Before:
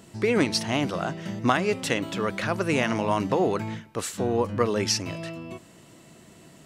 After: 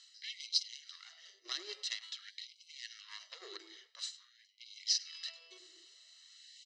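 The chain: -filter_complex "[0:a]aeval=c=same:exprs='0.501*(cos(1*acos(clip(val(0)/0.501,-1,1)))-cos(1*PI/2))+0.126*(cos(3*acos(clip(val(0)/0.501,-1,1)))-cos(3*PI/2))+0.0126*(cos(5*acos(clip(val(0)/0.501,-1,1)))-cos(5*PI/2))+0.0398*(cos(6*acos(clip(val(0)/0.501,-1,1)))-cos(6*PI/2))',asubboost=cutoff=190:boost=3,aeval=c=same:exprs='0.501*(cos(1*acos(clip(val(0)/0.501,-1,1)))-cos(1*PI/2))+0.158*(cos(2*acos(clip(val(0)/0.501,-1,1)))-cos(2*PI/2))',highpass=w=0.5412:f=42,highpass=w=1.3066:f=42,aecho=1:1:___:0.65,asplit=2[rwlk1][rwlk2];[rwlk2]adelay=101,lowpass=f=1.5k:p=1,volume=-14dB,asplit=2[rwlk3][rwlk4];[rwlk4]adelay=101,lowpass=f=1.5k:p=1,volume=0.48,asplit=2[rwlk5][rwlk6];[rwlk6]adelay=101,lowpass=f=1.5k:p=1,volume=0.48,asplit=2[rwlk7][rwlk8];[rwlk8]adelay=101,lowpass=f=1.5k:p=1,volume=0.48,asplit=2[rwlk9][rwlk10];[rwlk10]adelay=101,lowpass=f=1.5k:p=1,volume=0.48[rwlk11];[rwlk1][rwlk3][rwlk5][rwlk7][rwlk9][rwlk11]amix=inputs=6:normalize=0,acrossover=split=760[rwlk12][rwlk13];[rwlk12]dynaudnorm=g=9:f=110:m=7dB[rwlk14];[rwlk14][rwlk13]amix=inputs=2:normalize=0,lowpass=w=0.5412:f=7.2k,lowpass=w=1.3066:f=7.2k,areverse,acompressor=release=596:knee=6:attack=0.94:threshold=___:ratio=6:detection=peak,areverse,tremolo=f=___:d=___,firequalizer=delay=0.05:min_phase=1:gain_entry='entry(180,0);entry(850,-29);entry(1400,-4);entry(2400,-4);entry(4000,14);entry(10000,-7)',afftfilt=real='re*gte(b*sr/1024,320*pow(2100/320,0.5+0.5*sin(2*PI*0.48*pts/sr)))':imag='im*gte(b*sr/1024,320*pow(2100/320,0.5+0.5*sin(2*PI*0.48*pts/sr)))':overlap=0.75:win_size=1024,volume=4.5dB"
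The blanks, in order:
1, -33dB, 0.58, 0.46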